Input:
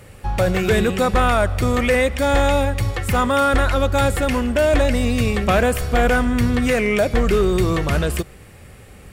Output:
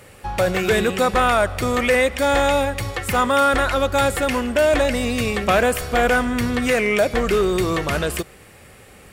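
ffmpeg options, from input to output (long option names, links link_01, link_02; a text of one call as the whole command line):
ffmpeg -i in.wav -af "lowshelf=frequency=190:gain=-11,volume=1.5dB" out.wav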